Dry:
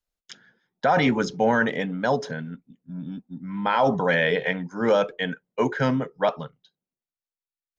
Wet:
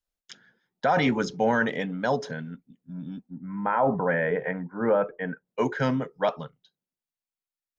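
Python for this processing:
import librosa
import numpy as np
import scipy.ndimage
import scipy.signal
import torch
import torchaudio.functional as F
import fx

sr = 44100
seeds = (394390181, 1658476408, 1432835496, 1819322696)

y = fx.lowpass(x, sr, hz=1800.0, slope=24, at=(3.3, 5.47))
y = y * librosa.db_to_amplitude(-2.5)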